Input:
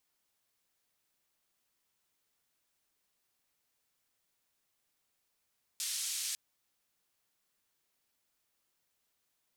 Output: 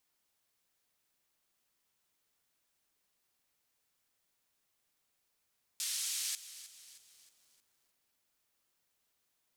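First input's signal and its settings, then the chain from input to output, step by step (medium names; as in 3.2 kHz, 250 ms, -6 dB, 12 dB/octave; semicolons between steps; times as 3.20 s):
noise band 3.6–9.3 kHz, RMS -37 dBFS 0.55 s
bit-crushed delay 313 ms, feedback 55%, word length 10-bit, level -14 dB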